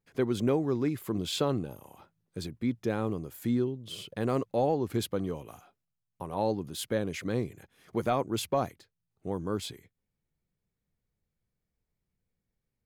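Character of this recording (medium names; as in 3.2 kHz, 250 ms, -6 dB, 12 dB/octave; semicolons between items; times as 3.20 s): noise floor -85 dBFS; spectral tilt -5.5 dB/octave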